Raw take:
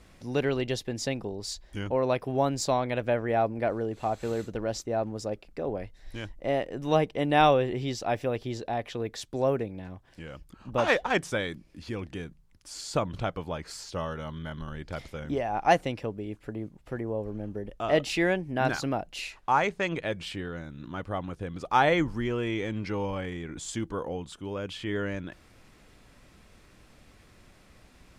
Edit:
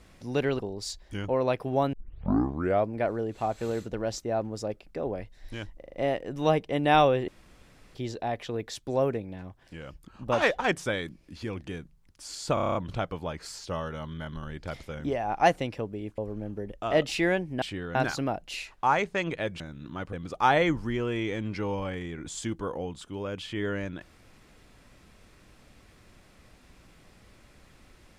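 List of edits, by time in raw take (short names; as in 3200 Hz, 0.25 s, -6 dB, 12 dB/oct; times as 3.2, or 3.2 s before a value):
0.59–1.21 cut
2.55 tape start 0.94 s
6.4 stutter 0.04 s, 5 plays
7.74–8.41 room tone
13 stutter 0.03 s, 8 plays
16.43–17.16 cut
20.25–20.58 move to 18.6
21.11–21.44 cut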